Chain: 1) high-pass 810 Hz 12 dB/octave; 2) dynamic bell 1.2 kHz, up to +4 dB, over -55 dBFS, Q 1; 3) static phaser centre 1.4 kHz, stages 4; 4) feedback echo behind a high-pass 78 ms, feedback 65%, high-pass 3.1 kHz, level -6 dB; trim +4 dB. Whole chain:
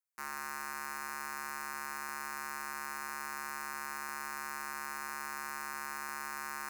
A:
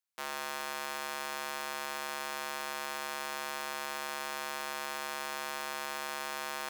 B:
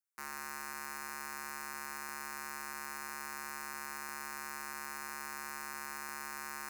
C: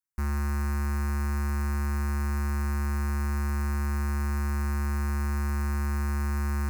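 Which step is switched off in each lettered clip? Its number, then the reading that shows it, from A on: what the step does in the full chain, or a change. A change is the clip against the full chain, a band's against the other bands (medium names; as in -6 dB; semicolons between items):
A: 3, 500 Hz band +10.5 dB; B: 2, crest factor change +2.0 dB; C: 1, 250 Hz band +21.0 dB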